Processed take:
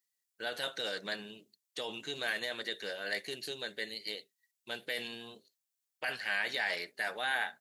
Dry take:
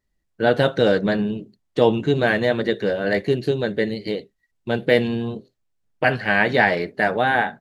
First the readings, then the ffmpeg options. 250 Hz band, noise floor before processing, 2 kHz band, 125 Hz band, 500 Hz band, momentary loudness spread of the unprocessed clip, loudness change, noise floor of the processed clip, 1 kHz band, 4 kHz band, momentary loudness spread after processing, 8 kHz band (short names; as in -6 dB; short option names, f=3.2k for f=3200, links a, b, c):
-27.0 dB, -73 dBFS, -12.5 dB, -32.5 dB, -22.5 dB, 10 LU, -16.0 dB, under -85 dBFS, -18.5 dB, -6.0 dB, 11 LU, n/a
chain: -af "alimiter=limit=-11.5dB:level=0:latency=1:release=13,aderivative,volume=3dB"